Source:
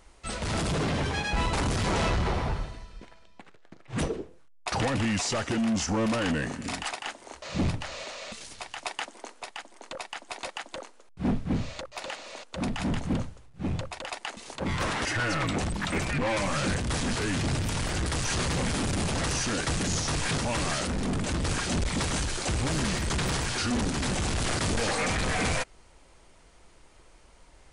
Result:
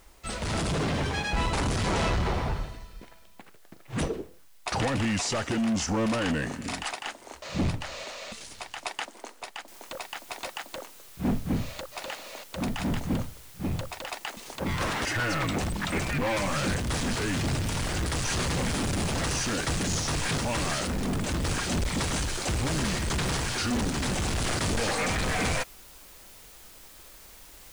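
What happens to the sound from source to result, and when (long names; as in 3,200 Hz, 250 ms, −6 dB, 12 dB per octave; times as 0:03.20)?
0:09.68: noise floor change −64 dB −51 dB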